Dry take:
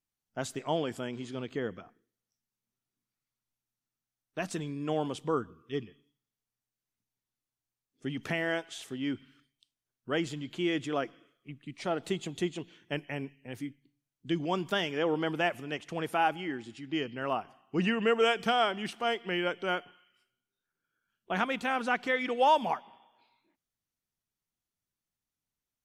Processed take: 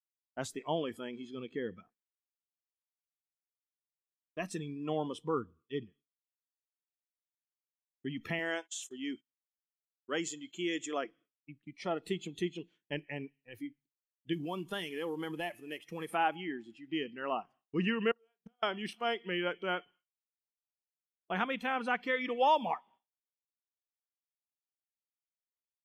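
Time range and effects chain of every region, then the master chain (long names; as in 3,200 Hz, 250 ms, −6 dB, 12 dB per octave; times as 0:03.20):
0:08.39–0:11.04: noise gate −51 dBFS, range −25 dB + high-pass filter 260 Hz 6 dB per octave + parametric band 7,000 Hz +13.5 dB 0.42 octaves
0:14.33–0:16.15: variable-slope delta modulation 64 kbit/s + dynamic equaliser 8,400 Hz, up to +3 dB, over −58 dBFS, Q 1.5 + downward compressor 2.5 to 1, threshold −31 dBFS
0:18.11–0:18.63: double-tracking delay 49 ms −10 dB + gate with flip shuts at −23 dBFS, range −35 dB + one half of a high-frequency compander decoder only
whole clip: noise reduction from a noise print of the clip's start 14 dB; downward expander −53 dBFS; level −3 dB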